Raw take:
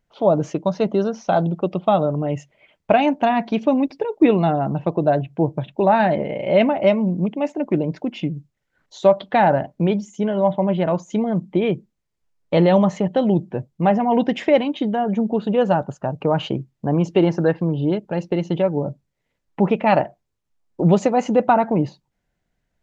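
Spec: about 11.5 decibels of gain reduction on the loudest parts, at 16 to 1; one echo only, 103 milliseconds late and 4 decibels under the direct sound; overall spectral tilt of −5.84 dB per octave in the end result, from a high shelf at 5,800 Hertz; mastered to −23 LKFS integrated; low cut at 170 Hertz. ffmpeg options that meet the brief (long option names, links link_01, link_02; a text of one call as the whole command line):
ffmpeg -i in.wav -af "highpass=170,highshelf=frequency=5800:gain=8.5,acompressor=threshold=-21dB:ratio=16,aecho=1:1:103:0.631,volume=3dB" out.wav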